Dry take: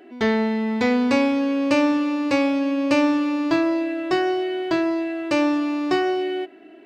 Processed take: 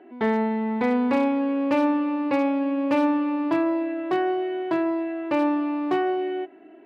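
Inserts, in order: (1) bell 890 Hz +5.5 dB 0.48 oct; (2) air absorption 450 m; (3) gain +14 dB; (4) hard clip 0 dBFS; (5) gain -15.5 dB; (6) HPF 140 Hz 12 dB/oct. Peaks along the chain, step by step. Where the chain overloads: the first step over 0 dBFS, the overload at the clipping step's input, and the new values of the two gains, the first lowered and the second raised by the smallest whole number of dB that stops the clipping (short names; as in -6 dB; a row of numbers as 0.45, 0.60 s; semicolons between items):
-7.5, -9.0, +5.0, 0.0, -15.5, -12.0 dBFS; step 3, 5.0 dB; step 3 +9 dB, step 5 -10.5 dB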